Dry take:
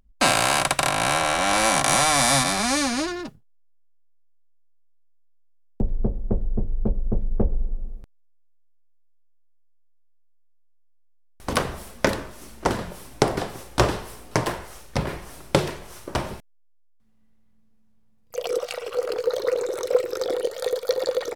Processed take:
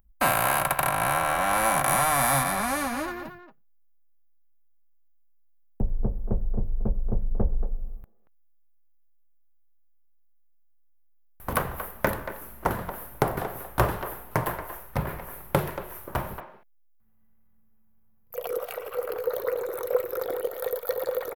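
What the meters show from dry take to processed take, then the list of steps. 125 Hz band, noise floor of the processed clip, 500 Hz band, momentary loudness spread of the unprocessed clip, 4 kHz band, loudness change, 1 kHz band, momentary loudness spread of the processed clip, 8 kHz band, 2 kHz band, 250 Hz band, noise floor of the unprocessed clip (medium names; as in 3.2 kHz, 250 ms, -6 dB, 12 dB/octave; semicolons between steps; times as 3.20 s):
-2.0 dB, -58 dBFS, -4.5 dB, 16 LU, -12.5 dB, -4.0 dB, -1.5 dB, 14 LU, -6.5 dB, -3.5 dB, -5.5 dB, -56 dBFS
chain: FFT filter 160 Hz 0 dB, 280 Hz -6 dB, 1 kHz +1 dB, 1.6 kHz 0 dB, 5.2 kHz -15 dB, 8.5 kHz -9 dB, 13 kHz +14 dB; speakerphone echo 230 ms, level -10 dB; trim -2 dB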